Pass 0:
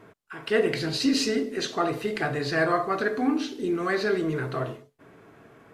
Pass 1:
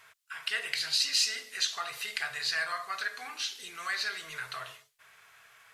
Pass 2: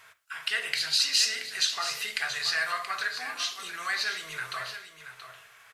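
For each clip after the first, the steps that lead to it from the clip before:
tilt shelf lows -9.5 dB, about 650 Hz; compression 1.5:1, threshold -31 dBFS, peak gain reduction 6 dB; amplifier tone stack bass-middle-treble 10-0-10
flange 1.4 Hz, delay 8.1 ms, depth 5 ms, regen -82%; delay 678 ms -10.5 dB; reverberation, pre-delay 32 ms, DRR 17 dB; trim +7.5 dB

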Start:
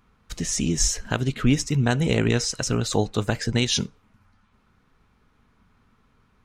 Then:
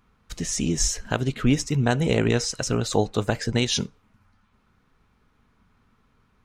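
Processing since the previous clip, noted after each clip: dynamic bell 610 Hz, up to +4 dB, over -33 dBFS, Q 0.79; trim -1.5 dB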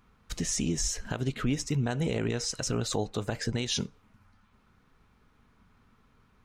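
compression 2:1, threshold -29 dBFS, peak gain reduction 8 dB; peak limiter -18.5 dBFS, peak gain reduction 6 dB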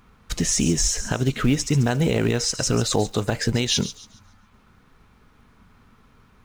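in parallel at -7 dB: short-mantissa float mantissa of 2-bit; on the sum: feedback echo behind a high-pass 139 ms, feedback 32%, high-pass 4.3 kHz, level -10 dB; trim +5.5 dB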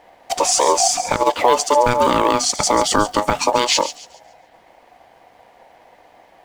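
ring modulator 730 Hz; trim +8 dB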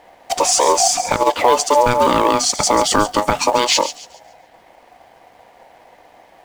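saturation -3 dBFS, distortion -23 dB; in parallel at -12 dB: companded quantiser 4-bit

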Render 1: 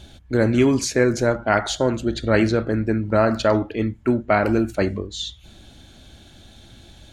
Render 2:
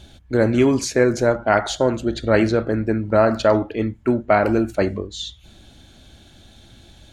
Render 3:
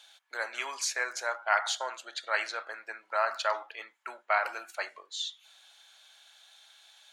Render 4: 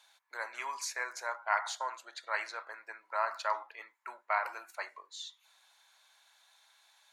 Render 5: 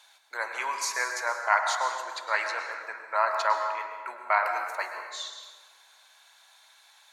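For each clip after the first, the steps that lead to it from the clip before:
dynamic bell 650 Hz, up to +4 dB, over -31 dBFS, Q 0.72; trim -1 dB
high-pass 890 Hz 24 dB/octave; trim -4.5 dB
graphic EQ with 31 bands 200 Hz -4 dB, 1 kHz +11 dB, 2 kHz +4 dB, 3.15 kHz -7 dB, 12.5 kHz +7 dB; trim -7 dB
plate-style reverb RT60 1.5 s, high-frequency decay 0.65×, pre-delay 95 ms, DRR 5 dB; trim +7 dB

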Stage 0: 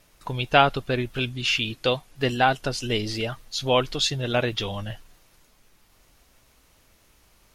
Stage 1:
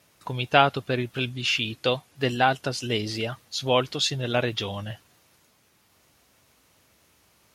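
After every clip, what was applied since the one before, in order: high-pass 78 Hz 24 dB/octave; trim -1 dB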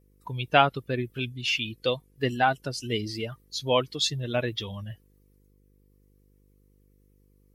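expander on every frequency bin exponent 1.5; mains buzz 50 Hz, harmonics 10, -62 dBFS -5 dB/octave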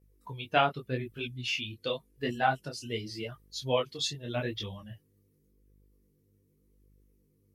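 detune thickener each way 30 cents; trim -1.5 dB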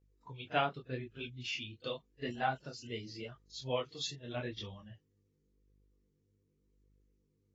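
reverse echo 38 ms -21 dB; trim -7 dB; AAC 24 kbps 24 kHz

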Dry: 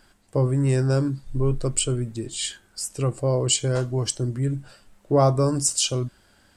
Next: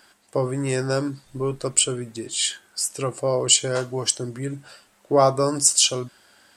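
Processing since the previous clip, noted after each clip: high-pass 580 Hz 6 dB/octave; trim +5.5 dB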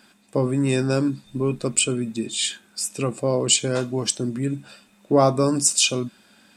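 small resonant body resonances 210/2500/3600 Hz, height 15 dB, ringing for 40 ms; trim -2 dB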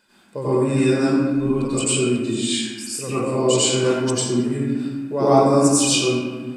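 reverberation RT60 1.5 s, pre-delay 85 ms, DRR -12 dB; trim -9.5 dB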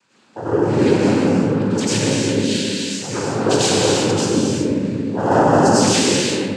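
noise-vocoded speech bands 8; gated-style reverb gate 400 ms flat, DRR -2 dB; trim -1 dB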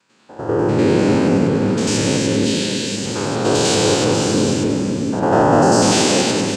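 spectrogram pixelated in time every 100 ms; delay 561 ms -9.5 dB; trim +2 dB

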